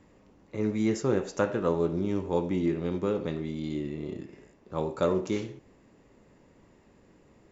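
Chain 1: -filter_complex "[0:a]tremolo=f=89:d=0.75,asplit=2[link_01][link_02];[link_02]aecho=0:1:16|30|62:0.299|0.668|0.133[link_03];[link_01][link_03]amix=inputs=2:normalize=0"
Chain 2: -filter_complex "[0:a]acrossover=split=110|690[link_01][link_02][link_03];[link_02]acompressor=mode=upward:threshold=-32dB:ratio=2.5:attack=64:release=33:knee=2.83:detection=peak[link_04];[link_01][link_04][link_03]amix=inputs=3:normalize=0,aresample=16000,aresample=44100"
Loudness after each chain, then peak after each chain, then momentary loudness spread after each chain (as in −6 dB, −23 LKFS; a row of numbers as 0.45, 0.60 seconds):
−31.5, −29.0 LKFS; −13.0, −11.0 dBFS; 12, 15 LU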